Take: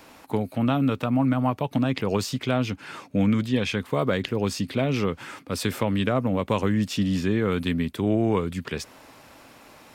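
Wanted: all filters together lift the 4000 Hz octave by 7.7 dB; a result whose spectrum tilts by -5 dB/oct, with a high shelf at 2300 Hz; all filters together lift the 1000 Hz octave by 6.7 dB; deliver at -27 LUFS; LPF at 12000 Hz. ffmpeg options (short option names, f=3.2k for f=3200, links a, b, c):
-af "lowpass=12k,equalizer=f=1k:t=o:g=7,highshelf=f=2.3k:g=6.5,equalizer=f=4k:t=o:g=3.5,volume=-3.5dB"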